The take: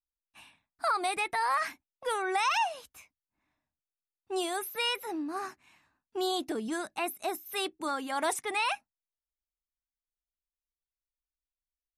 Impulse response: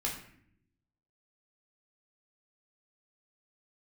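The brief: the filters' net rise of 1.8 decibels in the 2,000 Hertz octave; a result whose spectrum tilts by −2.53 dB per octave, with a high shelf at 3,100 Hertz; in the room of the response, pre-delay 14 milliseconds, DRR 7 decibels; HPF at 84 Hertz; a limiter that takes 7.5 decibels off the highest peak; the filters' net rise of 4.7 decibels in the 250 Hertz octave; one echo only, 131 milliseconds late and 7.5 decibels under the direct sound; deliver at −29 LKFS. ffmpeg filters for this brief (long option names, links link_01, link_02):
-filter_complex "[0:a]highpass=84,equalizer=frequency=250:width_type=o:gain=7,equalizer=frequency=2000:width_type=o:gain=3.5,highshelf=frequency=3100:gain=-3,alimiter=level_in=1.5dB:limit=-24dB:level=0:latency=1,volume=-1.5dB,aecho=1:1:131:0.422,asplit=2[link_01][link_02];[1:a]atrim=start_sample=2205,adelay=14[link_03];[link_02][link_03]afir=irnorm=-1:irlink=0,volume=-10.5dB[link_04];[link_01][link_04]amix=inputs=2:normalize=0,volume=4dB"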